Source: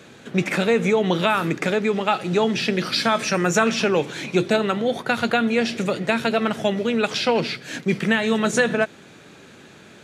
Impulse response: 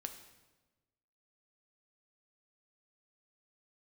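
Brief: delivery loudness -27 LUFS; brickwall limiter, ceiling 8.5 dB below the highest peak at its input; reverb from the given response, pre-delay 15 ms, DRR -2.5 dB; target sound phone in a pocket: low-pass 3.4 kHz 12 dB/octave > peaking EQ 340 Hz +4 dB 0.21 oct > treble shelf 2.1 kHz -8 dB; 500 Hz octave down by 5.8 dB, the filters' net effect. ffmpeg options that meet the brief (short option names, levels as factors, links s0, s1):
-filter_complex "[0:a]equalizer=f=500:t=o:g=-7.5,alimiter=limit=0.2:level=0:latency=1,asplit=2[s0][s1];[1:a]atrim=start_sample=2205,adelay=15[s2];[s1][s2]afir=irnorm=-1:irlink=0,volume=1.78[s3];[s0][s3]amix=inputs=2:normalize=0,lowpass=3400,equalizer=f=340:t=o:w=0.21:g=4,highshelf=f=2100:g=-8,volume=0.631"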